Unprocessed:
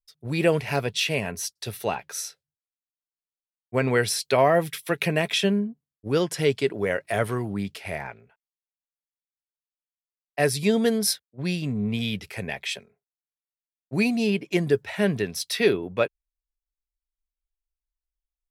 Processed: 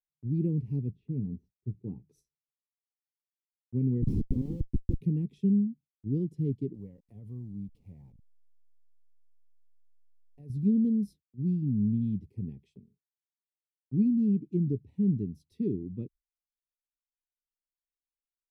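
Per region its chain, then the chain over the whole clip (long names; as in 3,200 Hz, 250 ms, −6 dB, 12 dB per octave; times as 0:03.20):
0:00.90–0:02.08: low-pass filter 1,200 Hz + double-tracking delay 16 ms −11.5 dB
0:04.02–0:05.01: notch filter 2,700 Hz, Q 18 + comb filter 3.8 ms, depth 71% + comparator with hysteresis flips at −22.5 dBFS
0:06.74–0:10.50: hold until the input has moved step −39 dBFS + low shelf with overshoot 470 Hz −8 dB, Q 3 + downward compressor, threshold −24 dBFS
whole clip: inverse Chebyshev low-pass filter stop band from 580 Hz, stop band 40 dB; noise gate with hold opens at −57 dBFS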